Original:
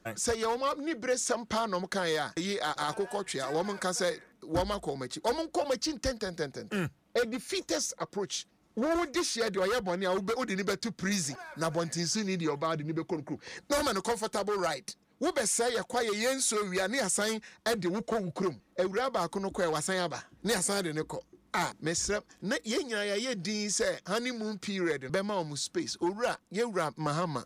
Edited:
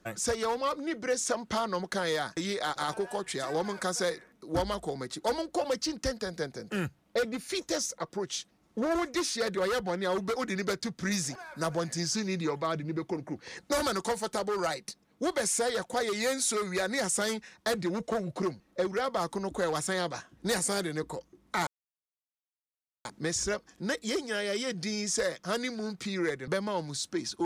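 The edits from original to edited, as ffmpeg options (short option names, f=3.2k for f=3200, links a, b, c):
-filter_complex "[0:a]asplit=2[a][b];[a]atrim=end=21.67,asetpts=PTS-STARTPTS,afade=t=out:st=21.666:d=0.004:c=hsin,apad=pad_dur=1.38[c];[b]atrim=start=21.67,asetpts=PTS-STARTPTS,afade=t=in:d=0.004:c=hsin[d];[c][d]concat=n=2:v=0:a=1"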